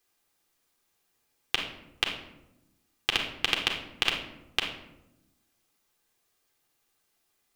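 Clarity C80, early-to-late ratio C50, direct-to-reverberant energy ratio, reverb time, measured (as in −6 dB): 9.0 dB, 5.5 dB, 0.5 dB, 0.95 s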